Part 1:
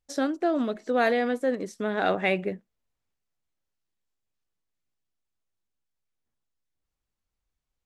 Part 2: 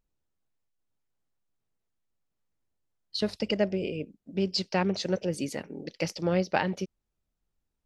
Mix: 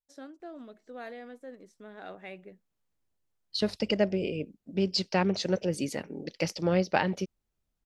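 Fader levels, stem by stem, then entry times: -19.0 dB, +0.5 dB; 0.00 s, 0.40 s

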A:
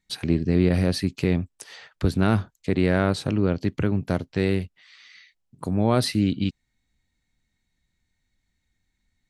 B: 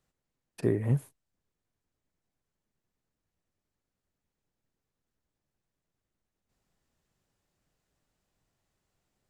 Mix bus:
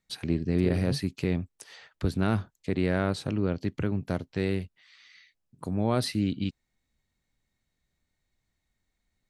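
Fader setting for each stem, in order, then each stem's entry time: -5.5 dB, -7.0 dB; 0.00 s, 0.00 s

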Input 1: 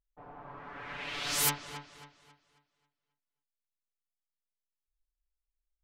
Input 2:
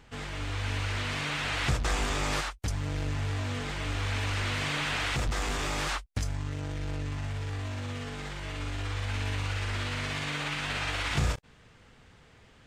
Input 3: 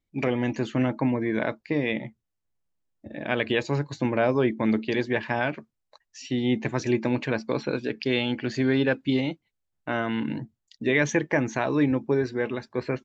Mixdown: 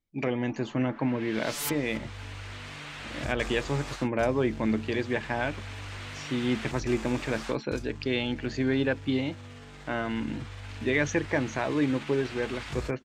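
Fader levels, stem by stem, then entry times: -4.5 dB, -9.0 dB, -3.5 dB; 0.20 s, 1.55 s, 0.00 s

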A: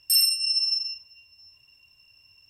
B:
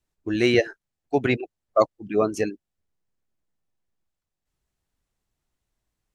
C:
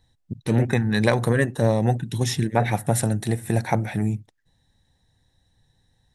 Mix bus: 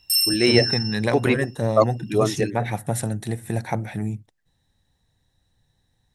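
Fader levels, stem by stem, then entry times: 0.0 dB, +1.0 dB, -3.5 dB; 0.00 s, 0.00 s, 0.00 s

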